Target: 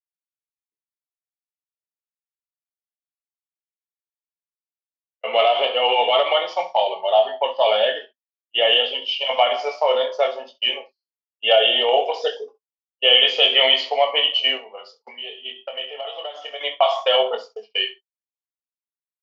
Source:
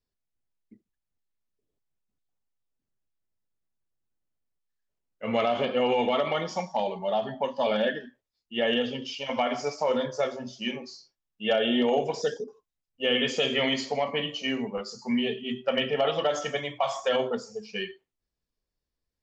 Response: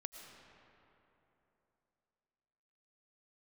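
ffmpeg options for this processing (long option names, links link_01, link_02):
-filter_complex "[0:a]agate=range=-41dB:threshold=-37dB:ratio=16:detection=peak,asettb=1/sr,asplit=3[link_01][link_02][link_03];[link_01]atrim=end=14.574[link_04];[link_02]atrim=start=14.57:end=16.61,asetpts=PTS-STARTPTS,afade=type=in:duration=0.004:curve=qsin,afade=type=out:start_time=2.036:duration=0.004:curve=qsin,acompressor=threshold=-38dB:ratio=6[link_05];[link_03]atrim=start=16.606[link_06];[link_04][link_05]acrossfade=duration=0.004:curve1=hsin:curve2=qsin[link_07];[link_07][link_06]acrossfade=duration=0.004:curve1=qsin:curve2=hsin,highpass=frequency=490:width=0.5412,highpass=frequency=490:width=1.3066,equalizer=frequency=680:width_type=q:width=4:gain=5,equalizer=frequency=1600:width_type=q:width=4:gain=-7,equalizer=frequency=3000:width_type=q:width=4:gain=9,lowpass=frequency=4300:width=0.5412,lowpass=frequency=4300:width=1.3066,aecho=1:1:23|66:0.447|0.168,volume=7dB" -ar 48000 -c:a libmp3lame -b:a 96k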